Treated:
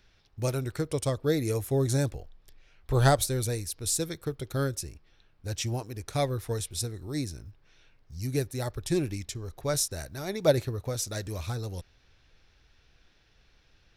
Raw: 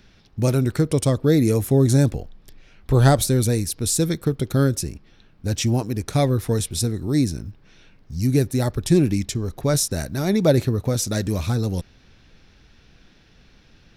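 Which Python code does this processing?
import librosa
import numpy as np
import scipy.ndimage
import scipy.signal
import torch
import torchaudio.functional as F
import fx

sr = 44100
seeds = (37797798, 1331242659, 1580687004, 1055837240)

y = fx.peak_eq(x, sr, hz=210.0, db=-11.0, octaves=1.2)
y = fx.upward_expand(y, sr, threshold_db=-27.0, expansion=1.5)
y = F.gain(torch.from_numpy(y), -2.0).numpy()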